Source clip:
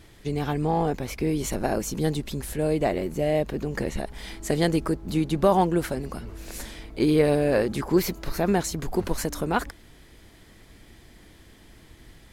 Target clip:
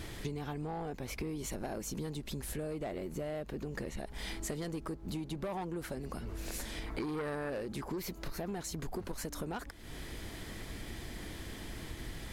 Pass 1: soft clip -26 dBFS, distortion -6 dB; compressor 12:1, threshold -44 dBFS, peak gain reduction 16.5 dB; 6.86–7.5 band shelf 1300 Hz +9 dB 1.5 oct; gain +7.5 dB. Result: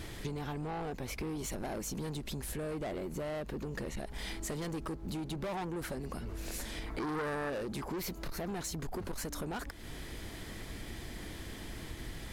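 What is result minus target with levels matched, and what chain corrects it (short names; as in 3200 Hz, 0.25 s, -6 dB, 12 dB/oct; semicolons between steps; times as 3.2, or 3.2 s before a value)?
soft clip: distortion +6 dB
soft clip -18.5 dBFS, distortion -12 dB; compressor 12:1, threshold -44 dBFS, peak gain reduction 22.5 dB; 6.86–7.5 band shelf 1300 Hz +9 dB 1.5 oct; gain +7.5 dB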